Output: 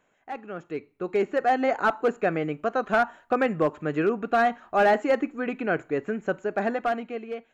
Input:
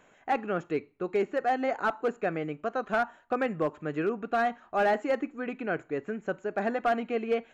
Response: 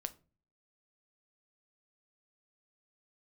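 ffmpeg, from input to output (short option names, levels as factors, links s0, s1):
-af "dynaudnorm=f=280:g=7:m=5.01,volume=0.376"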